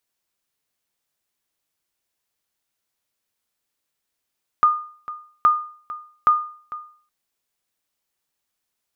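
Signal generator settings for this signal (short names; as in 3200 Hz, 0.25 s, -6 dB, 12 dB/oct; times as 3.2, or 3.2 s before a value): sonar ping 1220 Hz, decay 0.48 s, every 0.82 s, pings 3, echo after 0.45 s, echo -17 dB -8 dBFS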